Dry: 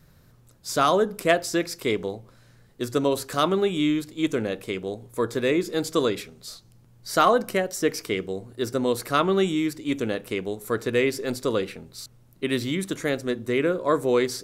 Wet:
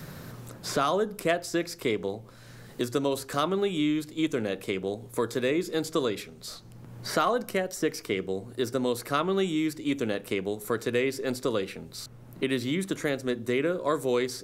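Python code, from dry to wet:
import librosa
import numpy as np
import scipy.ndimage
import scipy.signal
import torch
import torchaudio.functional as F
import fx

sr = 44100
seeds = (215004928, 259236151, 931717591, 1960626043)

y = fx.band_squash(x, sr, depth_pct=70)
y = y * 10.0 ** (-4.0 / 20.0)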